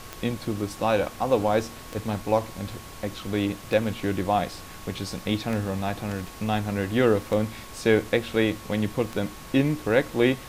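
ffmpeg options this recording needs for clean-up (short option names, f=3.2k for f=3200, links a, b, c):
-af "adeclick=t=4,bandreject=f=1.1k:w=30,afftdn=nr=28:nf=-41"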